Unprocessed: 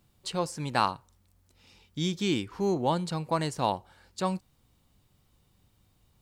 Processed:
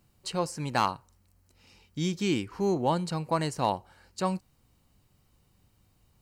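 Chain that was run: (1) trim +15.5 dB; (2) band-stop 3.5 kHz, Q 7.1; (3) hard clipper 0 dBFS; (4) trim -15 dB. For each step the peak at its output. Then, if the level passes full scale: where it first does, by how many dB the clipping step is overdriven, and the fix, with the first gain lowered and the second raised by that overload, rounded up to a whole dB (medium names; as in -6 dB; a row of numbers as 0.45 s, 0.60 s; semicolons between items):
+4.5 dBFS, +4.5 dBFS, 0.0 dBFS, -15.0 dBFS; step 1, 4.5 dB; step 1 +10.5 dB, step 4 -10 dB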